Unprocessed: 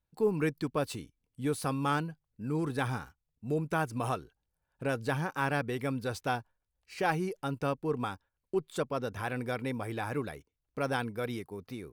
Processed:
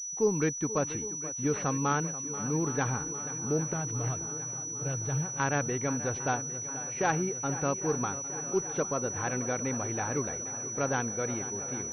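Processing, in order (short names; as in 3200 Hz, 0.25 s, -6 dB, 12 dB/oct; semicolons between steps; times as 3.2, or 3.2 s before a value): 3.73–5.4 ten-band EQ 125 Hz +6 dB, 250 Hz -11 dB, 500 Hz -5 dB, 1000 Hz -9 dB, 2000 Hz -12 dB; swung echo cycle 0.805 s, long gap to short 1.5:1, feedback 67%, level -14.5 dB; pulse-width modulation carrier 5900 Hz; gain +1.5 dB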